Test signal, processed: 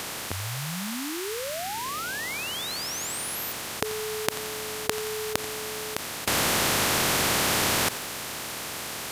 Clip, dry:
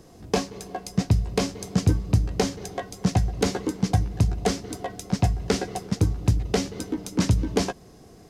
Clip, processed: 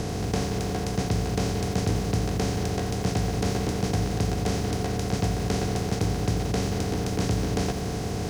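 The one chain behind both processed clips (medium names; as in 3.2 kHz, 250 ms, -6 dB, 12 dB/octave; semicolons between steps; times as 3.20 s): spectral levelling over time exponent 0.2; bit-crushed delay 87 ms, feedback 55%, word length 4-bit, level -14 dB; trim -10.5 dB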